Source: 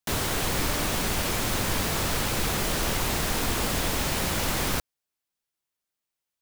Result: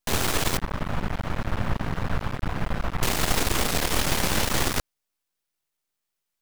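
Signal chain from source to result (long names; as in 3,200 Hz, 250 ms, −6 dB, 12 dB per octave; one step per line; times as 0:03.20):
0:00.57–0:03.03: drawn EQ curve 180 Hz 0 dB, 390 Hz −12 dB, 590 Hz −6 dB, 1,400 Hz −5 dB, 7,300 Hz −27 dB
half-wave rectification
highs frequency-modulated by the lows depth 0.48 ms
level +7 dB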